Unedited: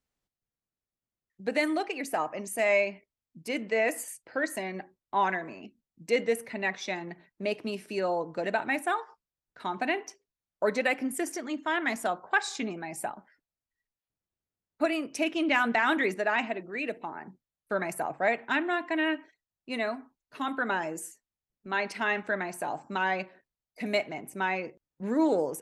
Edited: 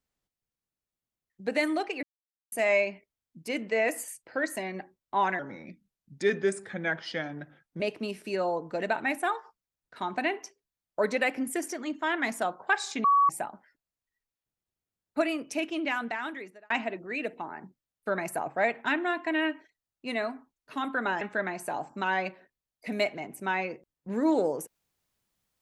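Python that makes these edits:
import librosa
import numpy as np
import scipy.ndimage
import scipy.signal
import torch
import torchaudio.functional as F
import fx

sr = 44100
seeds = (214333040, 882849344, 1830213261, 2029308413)

y = fx.edit(x, sr, fx.silence(start_s=2.03, length_s=0.49),
    fx.speed_span(start_s=5.39, length_s=2.05, speed=0.85),
    fx.bleep(start_s=12.68, length_s=0.25, hz=1130.0, db=-18.0),
    fx.fade_out_span(start_s=14.91, length_s=1.43),
    fx.cut(start_s=20.85, length_s=1.3), tone=tone)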